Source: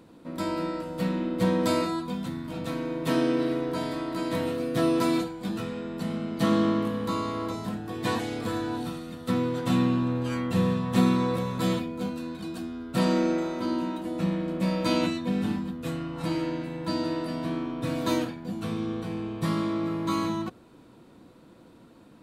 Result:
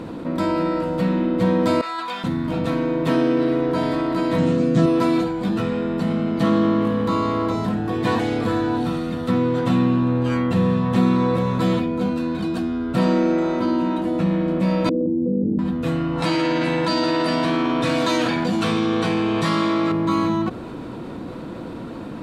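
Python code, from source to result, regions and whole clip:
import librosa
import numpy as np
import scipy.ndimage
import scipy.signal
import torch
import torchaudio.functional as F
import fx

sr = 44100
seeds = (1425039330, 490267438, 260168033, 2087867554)

y = fx.chain(x, sr, fx.highpass(hz=1200.0, slope=12),
    fx.high_shelf(hz=5600.0, db=-6.5),
    fx.over_compress(threshold_db=-42.0, ratio=-1.0), at=(1.81, 2.24))
y = fx.chain(y, sr, fx.lowpass_res(hz=7100.0, q=3.7),
    fx.peak_eq(hz=180.0, db=14.0, octaves=0.89), at=(4.38, 4.86))
y = fx.chain(y, sr, fx.steep_lowpass(hz=540.0, slope=96),
    fx.tilt_eq(slope=3.5),
    fx.env_flatten(amount_pct=100), at=(14.89, 15.59))
y = fx.chain(y, sr, fx.lowpass(hz=8100.0, slope=12),
    fx.tilt_eq(slope=3.0),
    fx.env_flatten(amount_pct=70), at=(16.22, 19.92))
y = fx.lowpass(y, sr, hz=2500.0, slope=6)
y = fx.env_flatten(y, sr, amount_pct=50)
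y = y * librosa.db_to_amplitude(2.5)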